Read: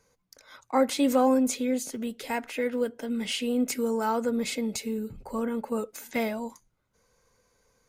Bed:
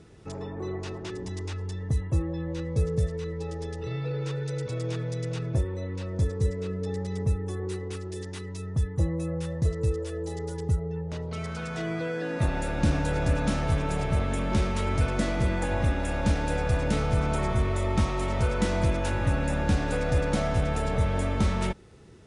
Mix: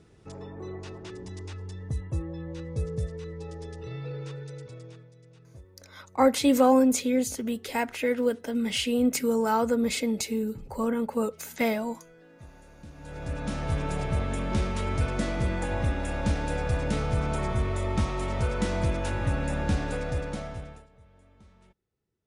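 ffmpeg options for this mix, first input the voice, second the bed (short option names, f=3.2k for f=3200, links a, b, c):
-filter_complex "[0:a]adelay=5450,volume=2.5dB[a];[1:a]volume=16dB,afade=t=out:st=4.11:d=1:silence=0.125893,afade=t=in:st=12.95:d=0.88:silence=0.0891251,afade=t=out:st=19.76:d=1.11:silence=0.0334965[b];[a][b]amix=inputs=2:normalize=0"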